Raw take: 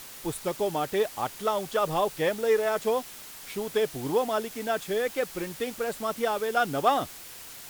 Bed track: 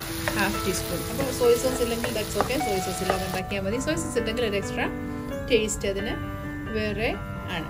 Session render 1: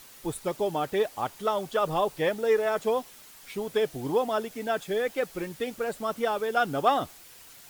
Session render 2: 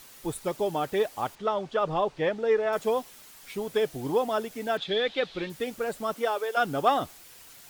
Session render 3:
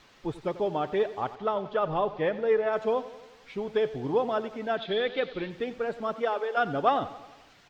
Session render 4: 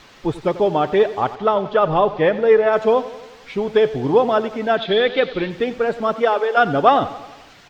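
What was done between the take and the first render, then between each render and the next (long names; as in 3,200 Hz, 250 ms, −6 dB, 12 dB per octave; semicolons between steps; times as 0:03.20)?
broadband denoise 7 dB, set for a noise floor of −44 dBFS
0:01.35–0:02.73: high-frequency loss of the air 130 metres; 0:04.77–0:05.50: low-pass with resonance 3,700 Hz, resonance Q 5.3; 0:06.14–0:06.56: high-pass filter 220 Hz → 470 Hz 24 dB per octave
high-frequency loss of the air 190 metres; repeating echo 90 ms, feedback 59%, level −15.5 dB
level +11 dB; brickwall limiter −3 dBFS, peak gain reduction 1 dB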